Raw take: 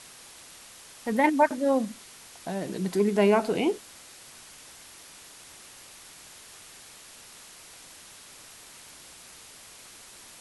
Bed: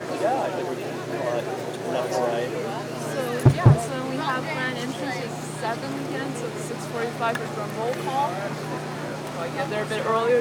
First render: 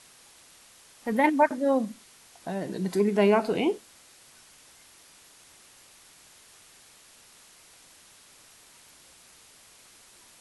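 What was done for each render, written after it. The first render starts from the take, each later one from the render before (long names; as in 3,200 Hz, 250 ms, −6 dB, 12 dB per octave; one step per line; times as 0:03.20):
noise reduction from a noise print 6 dB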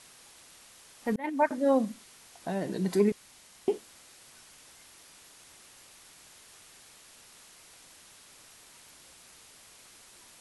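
0:01.16–0:01.79: fade in equal-power
0:03.12–0:03.68: fill with room tone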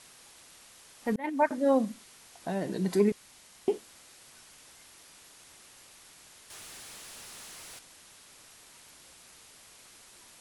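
0:06.50–0:07.79: leveller curve on the samples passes 3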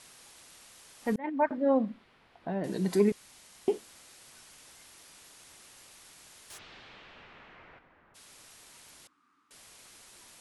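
0:01.18–0:02.64: high-frequency loss of the air 410 metres
0:06.57–0:08.14: low-pass filter 4,200 Hz → 1,700 Hz 24 dB per octave
0:09.07–0:09.51: pair of resonant band-passes 580 Hz, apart 2.1 octaves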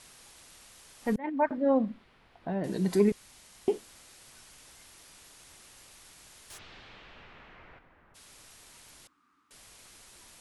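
low-shelf EQ 81 Hz +10.5 dB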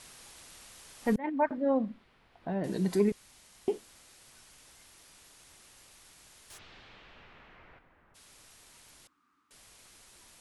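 speech leveller within 3 dB 0.5 s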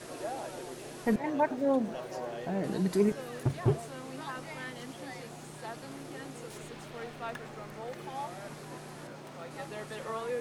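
mix in bed −14.5 dB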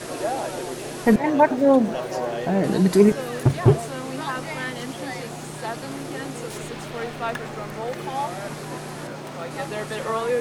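level +11.5 dB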